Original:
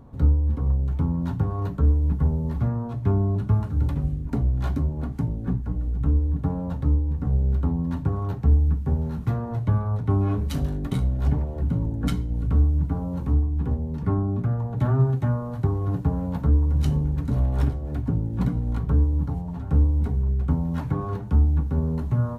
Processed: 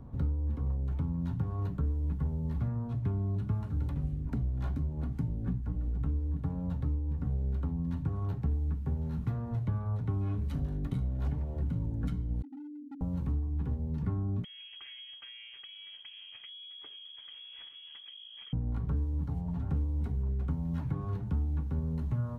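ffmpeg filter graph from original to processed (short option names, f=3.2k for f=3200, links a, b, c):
-filter_complex "[0:a]asettb=1/sr,asplit=3[a][b][c];[a]atrim=end=12.424[d];[b]atrim=start=12.42:end=13.01,asetpts=PTS-STARTPTS,afade=t=in:d=0.004:c=qsin,afade=t=out:st=0.586:d=0.004:c=qsin,acompressor=threshold=-20dB:ratio=6:attack=3.2:release=140:knee=1:detection=peak,asuperpass=centerf=280:order=8:qfactor=4.4,asoftclip=type=hard:threshold=-37.5dB[e];[c]atrim=start=13.006[f];[d][e]acrossfade=d=0.004:c1=hsin:c2=qsin[g];[g][f]acrossfade=d=0.004:c1=qsin:c2=hsin,asettb=1/sr,asplit=3[h][i][j];[h]atrim=end=14.444[k];[i]atrim=start=14.44:end=18.53,asetpts=PTS-STARTPTS,afade=t=in:d=0.004:c=qsin,afade=t=out:st=4.086:d=0.004:c=qsin,acompressor=threshold=-25dB:ratio=6:attack=3.2:release=140:knee=1:detection=peak,lowpass=f=2.9k:t=q:w=0.5098,lowpass=f=2.9k:t=q:w=0.6013,lowpass=f=2.9k:t=q:w=0.9,lowpass=f=2.9k:t=q:w=2.563,afreqshift=-3400[l];[j]atrim=start=18.526[m];[k][l]acrossfade=d=0.004:c1=hsin:c2=qsin[n];[n][m]acrossfade=d=0.004:c1=qsin:c2=hsin,bass=f=250:g=6,treble=f=4k:g=-5,acrossover=split=240|2000[o][p][q];[o]acompressor=threshold=-27dB:ratio=4[r];[p]acompressor=threshold=-40dB:ratio=4[s];[q]acompressor=threshold=-56dB:ratio=4[t];[r][s][t]amix=inputs=3:normalize=0,volume=-4.5dB"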